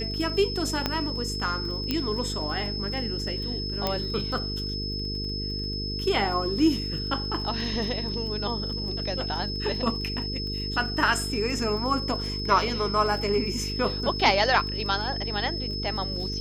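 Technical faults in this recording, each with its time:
buzz 50 Hz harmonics 9 -33 dBFS
crackle 25/s -35 dBFS
tone 5200 Hz -32 dBFS
0.86 pop -10 dBFS
1.91 pop -12 dBFS
3.87 pop -11 dBFS

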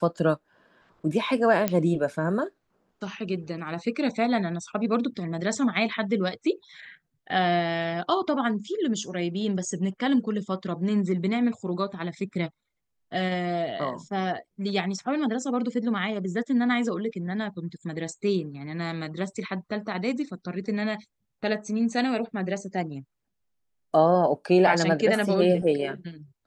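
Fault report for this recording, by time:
1.68 pop -10 dBFS

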